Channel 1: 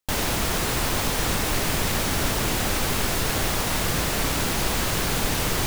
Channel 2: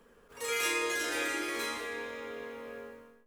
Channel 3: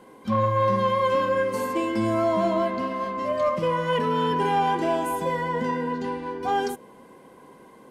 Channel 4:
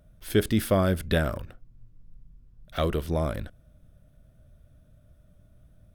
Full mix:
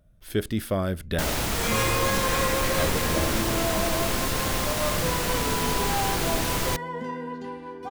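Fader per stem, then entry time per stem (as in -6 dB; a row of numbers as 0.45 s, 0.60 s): -2.5 dB, +1.5 dB, -6.5 dB, -3.5 dB; 1.10 s, 1.15 s, 1.40 s, 0.00 s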